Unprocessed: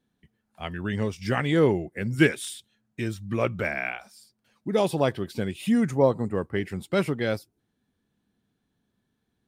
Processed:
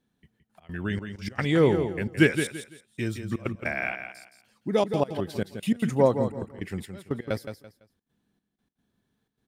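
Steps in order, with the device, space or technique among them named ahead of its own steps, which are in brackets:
trance gate with a delay (gate pattern "xxxx.x.xxx..x.x" 152 BPM −24 dB; repeating echo 168 ms, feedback 27%, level −8.5 dB)

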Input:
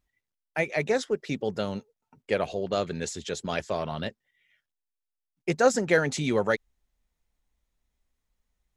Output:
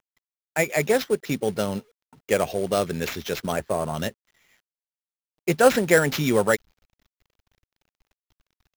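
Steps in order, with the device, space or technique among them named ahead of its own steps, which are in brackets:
0:03.52–0:03.94: low-pass filter 1,600 Hz 12 dB per octave
early companding sampler (sample-rate reduction 9,200 Hz, jitter 0%; log-companded quantiser 6 bits)
level +4.5 dB

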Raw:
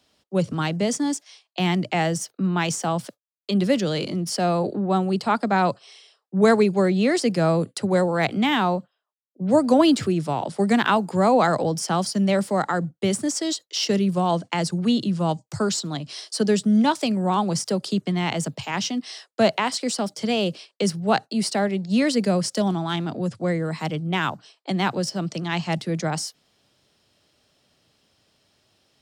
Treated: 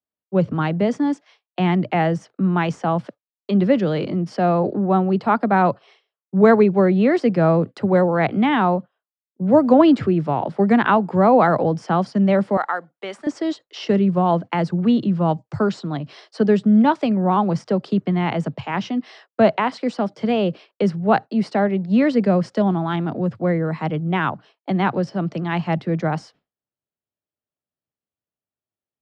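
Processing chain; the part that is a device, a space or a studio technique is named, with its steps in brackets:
hearing-loss simulation (low-pass filter 1,900 Hz 12 dB per octave; downward expander −47 dBFS)
0:12.57–0:13.27: high-pass filter 770 Hz 12 dB per octave
level +4 dB

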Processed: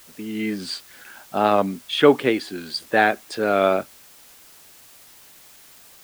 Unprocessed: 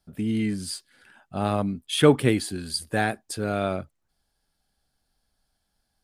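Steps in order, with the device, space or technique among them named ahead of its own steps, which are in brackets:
dictaphone (band-pass filter 320–3,700 Hz; automatic gain control gain up to 12.5 dB; tape wow and flutter; white noise bed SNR 25 dB)
level −1 dB

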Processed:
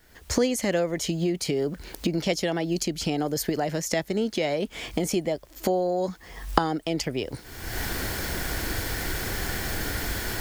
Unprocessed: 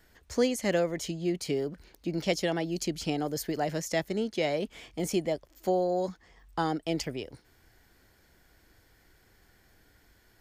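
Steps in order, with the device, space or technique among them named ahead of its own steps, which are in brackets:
cheap recorder with automatic gain (white noise bed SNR 39 dB; camcorder AGC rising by 41 dB per second)
level +2 dB

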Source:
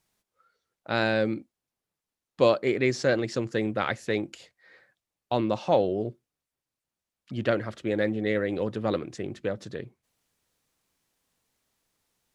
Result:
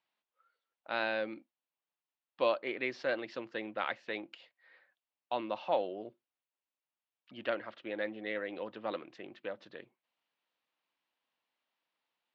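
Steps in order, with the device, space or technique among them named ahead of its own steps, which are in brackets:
phone earpiece (loudspeaker in its box 380–4,000 Hz, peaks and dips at 420 Hz −7 dB, 950 Hz +3 dB, 2,800 Hz +4 dB)
level −7 dB

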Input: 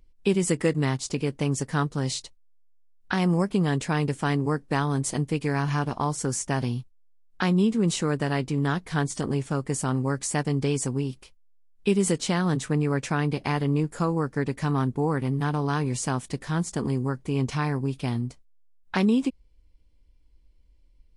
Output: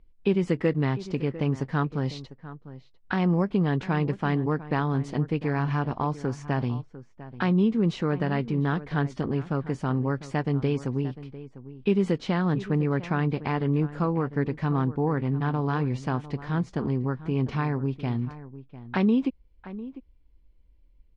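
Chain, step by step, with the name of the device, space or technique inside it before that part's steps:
shout across a valley (high-frequency loss of the air 270 metres; slap from a distant wall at 120 metres, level −15 dB)

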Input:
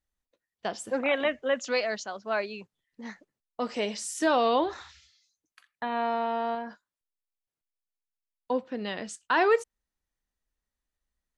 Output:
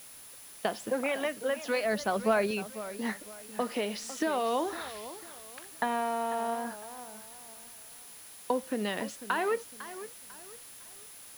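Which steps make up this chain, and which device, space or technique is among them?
medium wave at night (band-pass filter 110–4,100 Hz; downward compressor, threshold −33 dBFS, peak gain reduction 14 dB; amplitude tremolo 0.38 Hz, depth 36%; steady tone 10,000 Hz −59 dBFS; white noise bed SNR 17 dB)
0:01.85–0:02.51: low-shelf EQ 330 Hz +11 dB
feedback echo with a swinging delay time 501 ms, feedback 34%, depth 157 cents, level −14 dB
level +8.5 dB

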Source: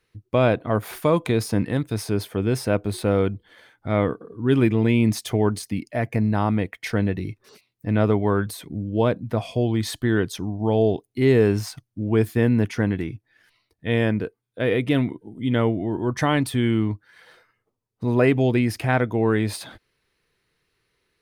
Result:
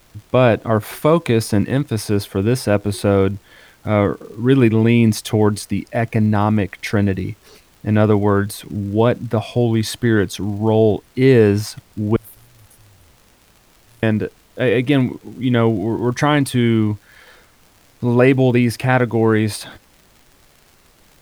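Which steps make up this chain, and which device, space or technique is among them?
0:12.16–0:14.03: inverse Chebyshev band-stop filter 250–2,300 Hz, stop band 80 dB
vinyl LP (surface crackle; pink noise bed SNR 35 dB)
level +5.5 dB

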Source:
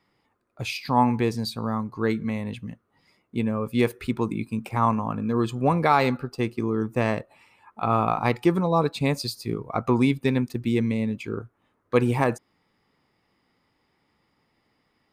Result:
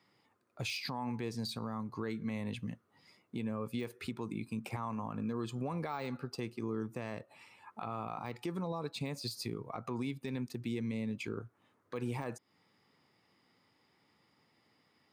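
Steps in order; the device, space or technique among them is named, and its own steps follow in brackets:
broadcast voice chain (high-pass filter 88 Hz 24 dB per octave; de-essing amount 75%; downward compressor 3 to 1, threshold −33 dBFS, peak gain reduction 14 dB; parametric band 5,500 Hz +4 dB 1.8 octaves; brickwall limiter −25.5 dBFS, peak gain reduction 8.5 dB)
level −2.5 dB

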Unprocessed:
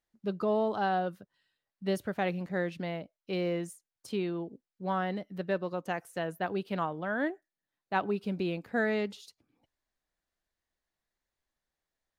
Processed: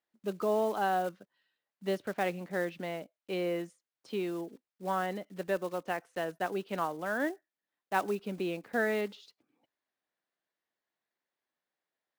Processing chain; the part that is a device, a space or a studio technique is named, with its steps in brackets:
early digital voice recorder (band-pass filter 240–3,900 Hz; one scale factor per block 5 bits)

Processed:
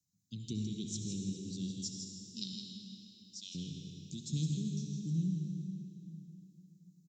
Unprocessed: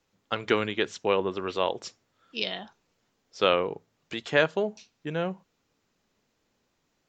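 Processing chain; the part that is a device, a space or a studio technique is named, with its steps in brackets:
inverse Chebyshev band-stop filter 660–1,700 Hz, stop band 80 dB
noise reduction from a noise print of the clip's start 7 dB
0:02.55–0:03.55: high-pass filter 890 Hz 24 dB per octave
PA in a hall (high-pass filter 110 Hz; parametric band 3,900 Hz +7 dB 0.27 octaves; single-tap delay 162 ms −7 dB; convolution reverb RT60 3.2 s, pre-delay 59 ms, DRR 2.5 dB)
parametric band 320 Hz +4.5 dB 0.75 octaves
level +4.5 dB

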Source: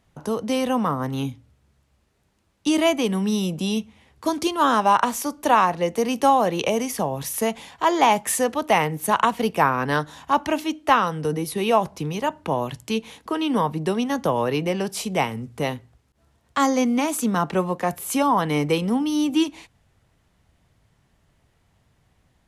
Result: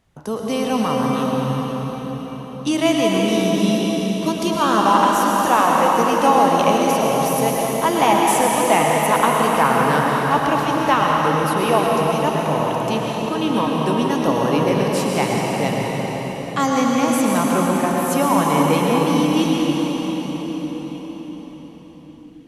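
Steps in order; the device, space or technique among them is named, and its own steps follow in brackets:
cathedral (convolution reverb RT60 5.9 s, pre-delay 100 ms, DRR −3 dB)

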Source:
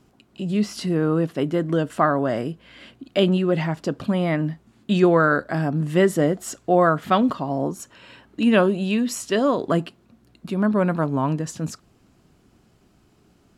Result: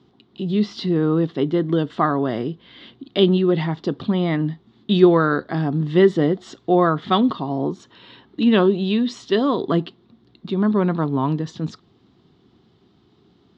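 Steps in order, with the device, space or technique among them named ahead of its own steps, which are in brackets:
guitar cabinet (loudspeaker in its box 92–4,500 Hz, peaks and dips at 380 Hz +4 dB, 590 Hz −9 dB, 1,500 Hz −6 dB, 2,500 Hz −8 dB, 3,600 Hz +9 dB)
level +2 dB

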